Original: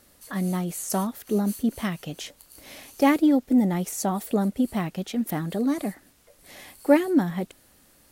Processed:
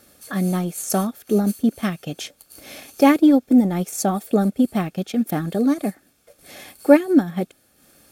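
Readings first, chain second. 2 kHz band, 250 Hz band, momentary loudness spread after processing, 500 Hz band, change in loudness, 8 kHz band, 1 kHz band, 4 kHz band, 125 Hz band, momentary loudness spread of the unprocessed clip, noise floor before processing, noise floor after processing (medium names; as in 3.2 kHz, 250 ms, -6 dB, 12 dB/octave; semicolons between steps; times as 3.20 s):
+3.5 dB, +5.0 dB, 17 LU, +5.5 dB, +5.0 dB, +3.5 dB, +4.0 dB, +3.5 dB, +4.0 dB, 17 LU, -58 dBFS, -61 dBFS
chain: comb of notches 970 Hz; transient shaper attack 0 dB, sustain -7 dB; trim +6 dB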